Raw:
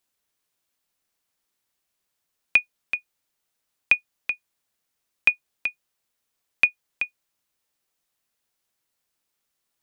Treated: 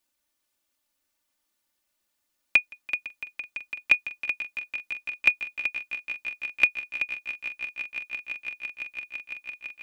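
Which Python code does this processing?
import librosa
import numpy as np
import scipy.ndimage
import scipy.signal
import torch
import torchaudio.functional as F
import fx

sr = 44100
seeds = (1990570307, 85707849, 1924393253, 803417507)

y = x + 0.82 * np.pad(x, (int(3.4 * sr / 1000.0), 0))[:len(x)]
y = fx.echo_swell(y, sr, ms=168, loudest=8, wet_db=-16)
y = F.gain(torch.from_numpy(y), -2.0).numpy()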